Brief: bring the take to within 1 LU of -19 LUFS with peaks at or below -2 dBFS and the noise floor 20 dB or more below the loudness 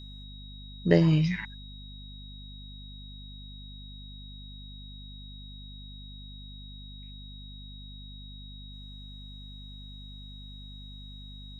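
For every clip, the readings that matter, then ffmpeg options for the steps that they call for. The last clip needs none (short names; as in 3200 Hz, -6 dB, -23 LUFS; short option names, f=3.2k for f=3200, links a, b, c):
hum 50 Hz; harmonics up to 250 Hz; hum level -43 dBFS; steady tone 3800 Hz; tone level -48 dBFS; loudness -35.5 LUFS; peak -5.5 dBFS; loudness target -19.0 LUFS
-> -af "bandreject=f=50:t=h:w=4,bandreject=f=100:t=h:w=4,bandreject=f=150:t=h:w=4,bandreject=f=200:t=h:w=4,bandreject=f=250:t=h:w=4"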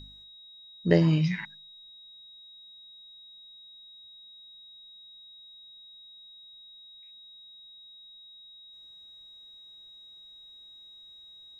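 hum none; steady tone 3800 Hz; tone level -48 dBFS
-> -af "bandreject=f=3.8k:w=30"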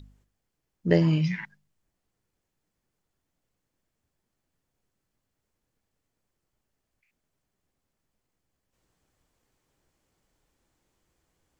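steady tone none; loudness -25.0 LUFS; peak -5.5 dBFS; loudness target -19.0 LUFS
-> -af "volume=6dB,alimiter=limit=-2dB:level=0:latency=1"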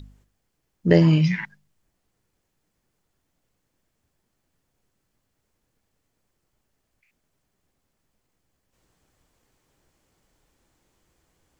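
loudness -19.5 LUFS; peak -2.0 dBFS; noise floor -76 dBFS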